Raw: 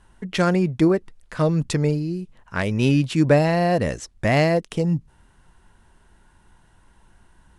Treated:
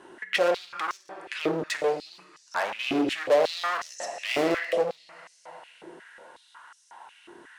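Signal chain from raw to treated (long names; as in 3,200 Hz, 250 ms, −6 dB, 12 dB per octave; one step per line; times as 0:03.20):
high-shelf EQ 6,700 Hz −10.5 dB
coupled-rooms reverb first 0.8 s, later 2.7 s, DRR 5.5 dB
gain into a clipping stage and back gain 23.5 dB
downward compressor 3 to 1, threshold −38 dBFS, peak gain reduction 9.5 dB
high-pass on a step sequencer 5.5 Hz 360–5,800 Hz
level +8 dB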